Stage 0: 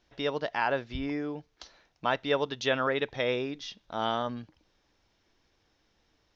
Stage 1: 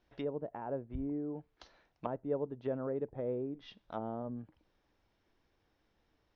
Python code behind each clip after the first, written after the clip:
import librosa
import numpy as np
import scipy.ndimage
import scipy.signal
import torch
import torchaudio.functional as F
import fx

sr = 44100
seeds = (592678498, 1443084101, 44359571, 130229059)

y = fx.lowpass(x, sr, hz=2000.0, slope=6)
y = fx.env_lowpass_down(y, sr, base_hz=490.0, full_db=-30.0)
y = F.gain(torch.from_numpy(y), -3.5).numpy()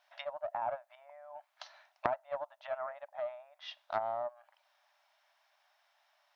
y = fx.brickwall_highpass(x, sr, low_hz=570.0)
y = fx.doppler_dist(y, sr, depth_ms=0.17)
y = F.gain(torch.from_numpy(y), 8.0).numpy()